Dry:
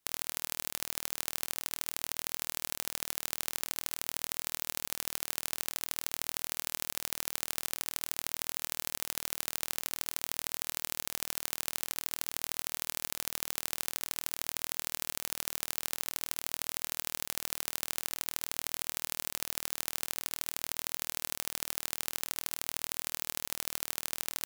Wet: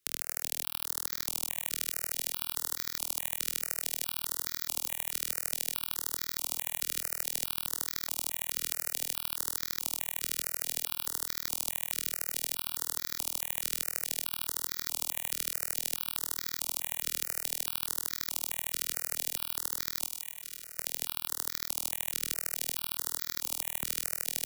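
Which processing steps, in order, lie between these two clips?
20.07–20.79 s: hard clipper -21 dBFS, distortion -17 dB; on a send: feedback echo behind a high-pass 251 ms, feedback 59%, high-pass 1.5 kHz, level -5.5 dB; on the sum: stepped phaser 4.7 Hz 220–2800 Hz; trim +2 dB

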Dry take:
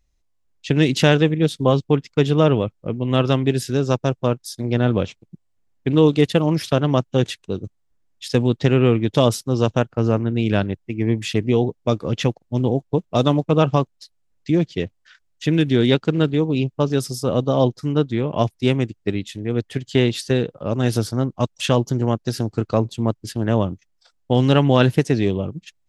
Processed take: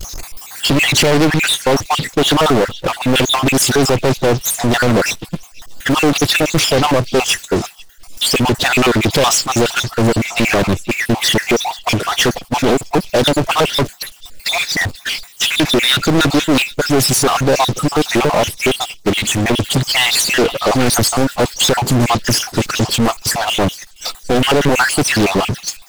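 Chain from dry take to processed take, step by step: random holes in the spectrogram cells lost 56%; bass shelf 210 Hz -8.5 dB; peak limiter -15 dBFS, peak gain reduction 10.5 dB; treble shelf 7.9 kHz +9 dB; upward compressor, threshold -35 dBFS; power-law waveshaper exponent 0.35; repeats whose band climbs or falls 484 ms, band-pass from 3.8 kHz, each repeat 0.7 oct, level -12 dB; expander -25 dBFS; loudspeaker Doppler distortion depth 0.89 ms; trim +7.5 dB

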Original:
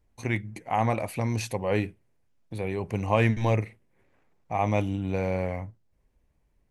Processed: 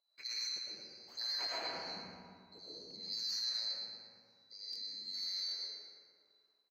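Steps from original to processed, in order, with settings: split-band scrambler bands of 4 kHz; wah-wah 1 Hz 230–1600 Hz, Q 2.2; in parallel at -11 dB: saturation -38.5 dBFS, distortion -9 dB; 0.62–1.15 s: on the sum: level held to a coarse grid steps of 16 dB; reverberation RT60 2.2 s, pre-delay 65 ms, DRR -8.5 dB; peak limiter -30.5 dBFS, peak gain reduction 10 dB; feedback delay 118 ms, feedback 48%, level -9 dB; buffer glitch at 4.71/5.47 s, samples 1024, times 1

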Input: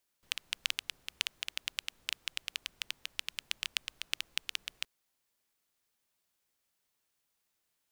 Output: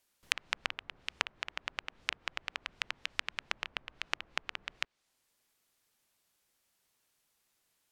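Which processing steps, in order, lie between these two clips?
low-pass that closes with the level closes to 1.5 kHz, closed at -40.5 dBFS; trim +5 dB

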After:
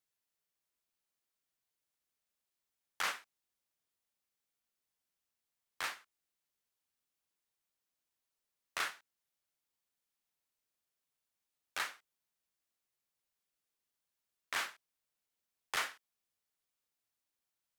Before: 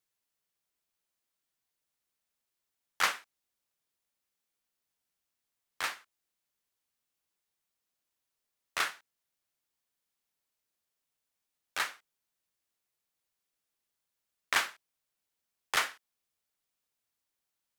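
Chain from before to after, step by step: peak limiter -19.5 dBFS, peak gain reduction 7 dB; trim -3.5 dB

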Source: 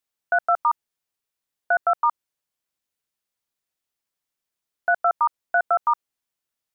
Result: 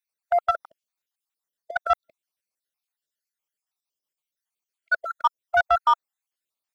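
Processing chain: random holes in the spectrogram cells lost 53%; bass shelf 290 Hz -11 dB; waveshaping leveller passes 1; trim +1.5 dB

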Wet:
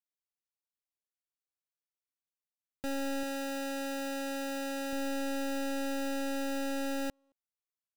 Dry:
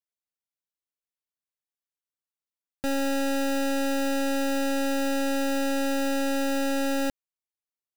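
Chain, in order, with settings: 3.23–4.93 s: bass shelf 210 Hz -8 dB; speakerphone echo 220 ms, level -30 dB; trim -8 dB

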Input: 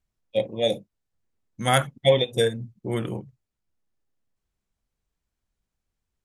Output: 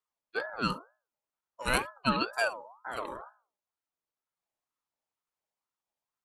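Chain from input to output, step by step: high-pass 97 Hz 12 dB/octave; hum notches 60/120/180/240/300/360/420/480/540 Hz; ring modulator with a swept carrier 940 Hz, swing 25%, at 2.1 Hz; trim -4.5 dB

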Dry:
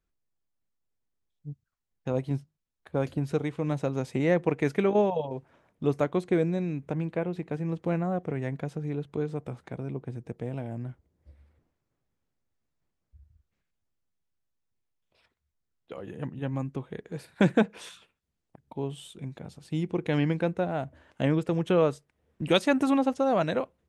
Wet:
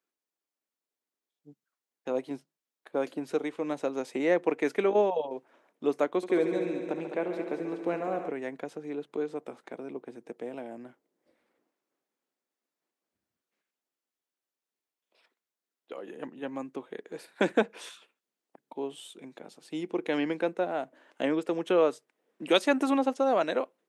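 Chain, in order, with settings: high-pass 270 Hz 24 dB/octave; 6.16–8.28 s: multi-head delay 69 ms, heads all three, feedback 59%, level -12 dB

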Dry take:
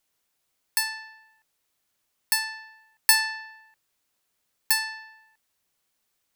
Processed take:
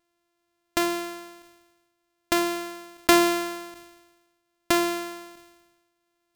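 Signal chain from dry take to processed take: sorted samples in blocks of 128 samples; decay stretcher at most 47 dB/s

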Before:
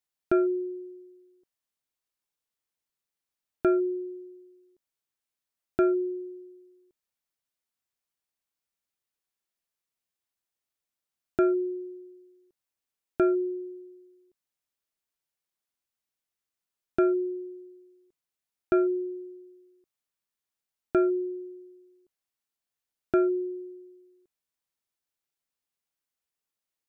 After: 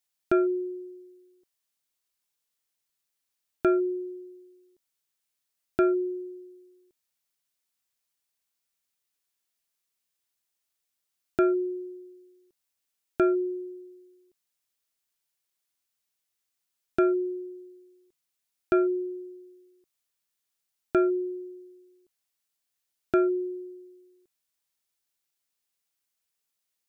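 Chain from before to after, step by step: treble shelf 2.1 kHz +7.5 dB

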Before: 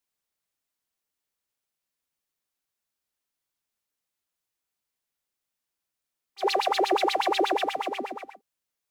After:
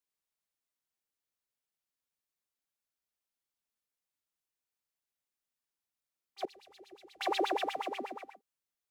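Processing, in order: 6.45–7.21 s: amplifier tone stack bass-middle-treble 10-0-1; trim -7 dB

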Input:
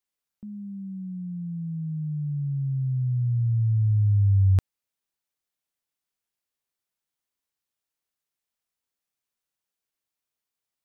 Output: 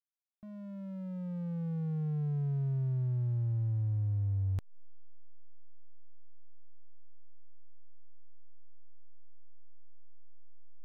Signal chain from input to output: hysteresis with a dead band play -31.5 dBFS; compression 10:1, threshold -29 dBFS, peak gain reduction 12 dB; trim -1 dB

